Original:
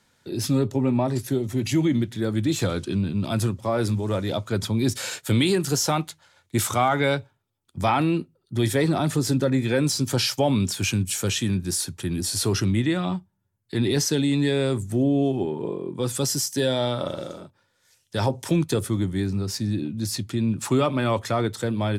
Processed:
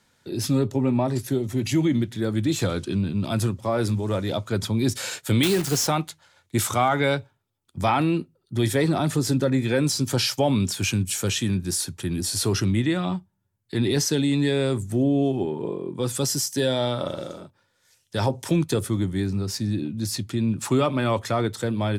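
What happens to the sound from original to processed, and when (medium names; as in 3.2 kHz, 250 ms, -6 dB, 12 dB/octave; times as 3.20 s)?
5.43–5.89 s: block-companded coder 3-bit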